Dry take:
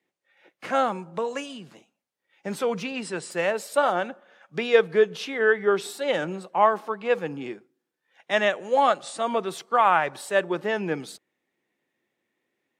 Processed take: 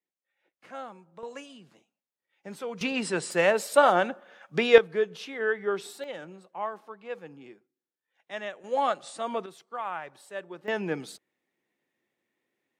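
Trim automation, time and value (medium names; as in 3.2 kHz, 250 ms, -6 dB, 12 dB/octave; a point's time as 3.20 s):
-17 dB
from 1.23 s -10 dB
from 2.81 s +2.5 dB
from 4.78 s -7 dB
from 6.04 s -14 dB
from 8.64 s -6 dB
from 9.46 s -15 dB
from 10.68 s -3 dB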